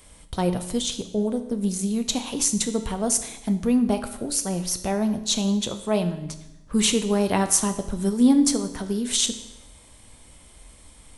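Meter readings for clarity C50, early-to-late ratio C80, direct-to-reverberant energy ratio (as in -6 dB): 11.5 dB, 13.5 dB, 8.5 dB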